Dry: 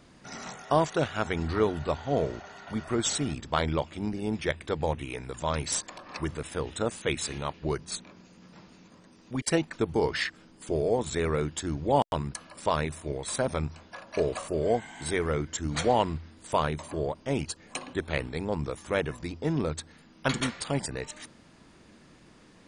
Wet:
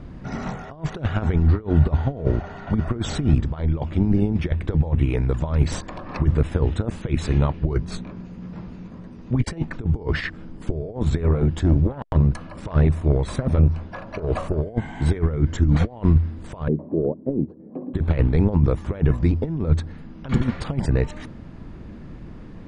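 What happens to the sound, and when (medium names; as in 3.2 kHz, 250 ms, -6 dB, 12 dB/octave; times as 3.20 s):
7.69–9.69 s: doubling 17 ms -12.5 dB
11.23–14.62 s: transformer saturation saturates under 910 Hz
16.68–17.94 s: Butterworth band-pass 310 Hz, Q 0.99
whole clip: treble shelf 4.3 kHz -7 dB; compressor with a negative ratio -32 dBFS, ratio -0.5; RIAA curve playback; trim +4.5 dB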